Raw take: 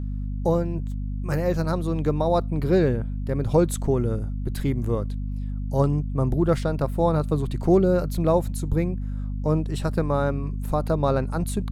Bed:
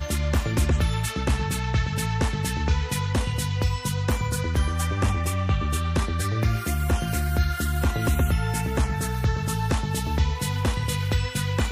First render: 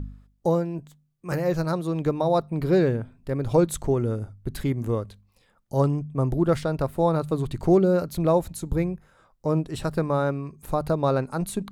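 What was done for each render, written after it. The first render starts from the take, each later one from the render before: de-hum 50 Hz, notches 5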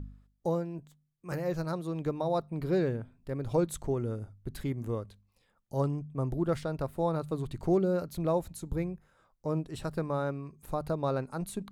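gain -8 dB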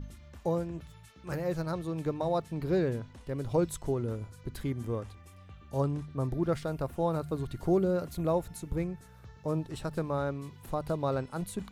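add bed -27.5 dB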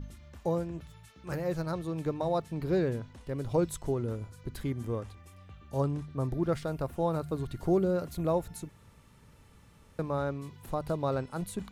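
8.69–9.99 room tone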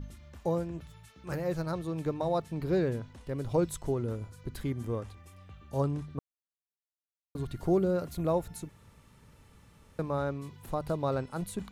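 6.19–7.35 mute

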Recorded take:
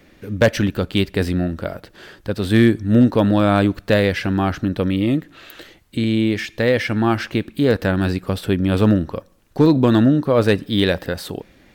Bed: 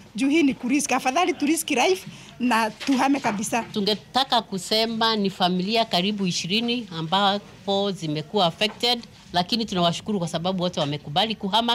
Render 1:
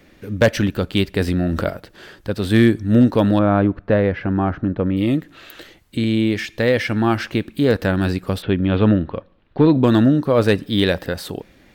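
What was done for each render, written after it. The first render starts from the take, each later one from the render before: 1.28–1.7 fast leveller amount 70%; 3.39–4.97 LPF 1500 Hz; 8.42–9.84 steep low-pass 3800 Hz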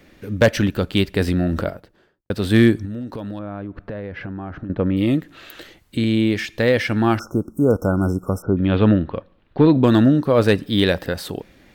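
1.38–2.3 studio fade out; 2.85–4.7 compressor 8:1, threshold -27 dBFS; 7.19–8.57 brick-wall FIR band-stop 1500–5200 Hz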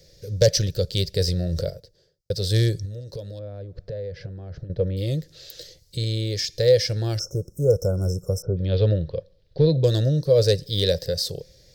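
EQ curve 160 Hz 0 dB, 240 Hz -26 dB, 510 Hz +3 dB, 800 Hz -19 dB, 1200 Hz -23 dB, 1800 Hz -13 dB, 2700 Hz -13 dB, 5000 Hz +13 dB, 9100 Hz 0 dB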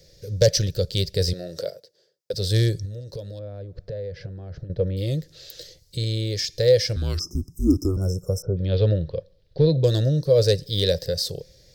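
1.33–2.34 HPF 330 Hz; 6.96–7.97 frequency shift -190 Hz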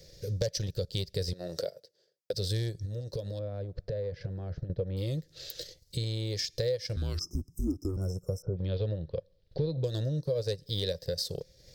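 compressor 4:1, threshold -30 dBFS, peak gain reduction 15.5 dB; transient shaper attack 0 dB, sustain -8 dB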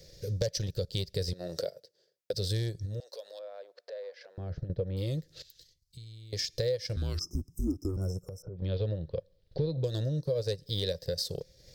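3–4.38 HPF 580 Hz 24 dB/oct; 5.42–6.33 passive tone stack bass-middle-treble 6-0-2; 8.22–8.62 compressor 4:1, threshold -39 dBFS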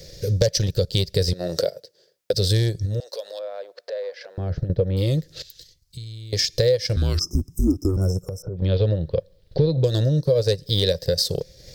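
gain +11.5 dB

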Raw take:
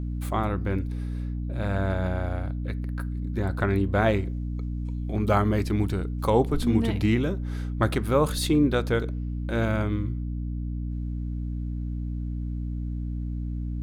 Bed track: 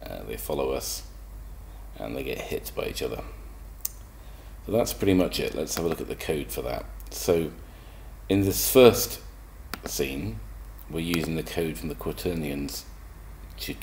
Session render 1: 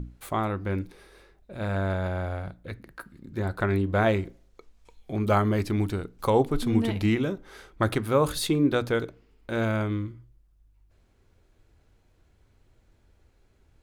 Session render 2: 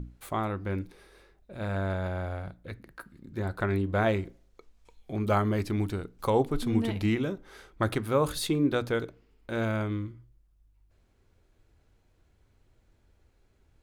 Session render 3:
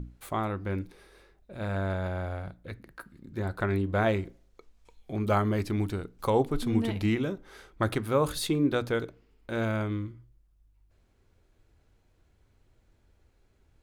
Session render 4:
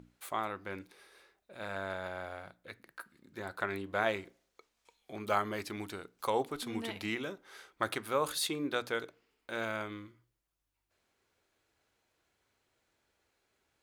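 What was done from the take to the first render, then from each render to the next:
notches 60/120/180/240/300 Hz
gain -3 dB
nothing audible
HPF 970 Hz 6 dB/oct

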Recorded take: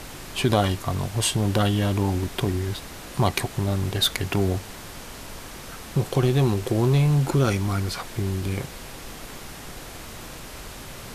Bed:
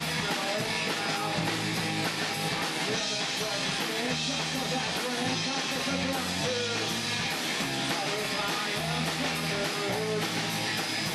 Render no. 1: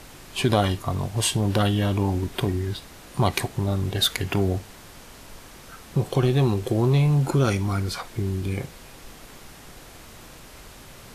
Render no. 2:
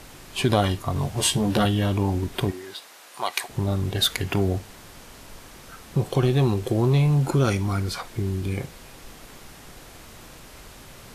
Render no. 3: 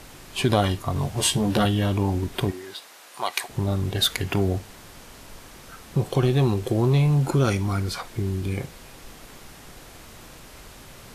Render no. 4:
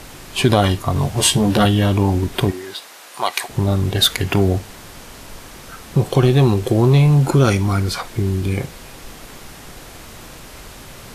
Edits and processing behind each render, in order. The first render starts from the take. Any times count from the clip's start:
noise print and reduce 6 dB
0.94–1.65 doubler 14 ms -3.5 dB; 2.5–3.48 HPF 440 Hz -> 910 Hz
nothing audible
gain +7 dB; limiter -1 dBFS, peak gain reduction 3 dB

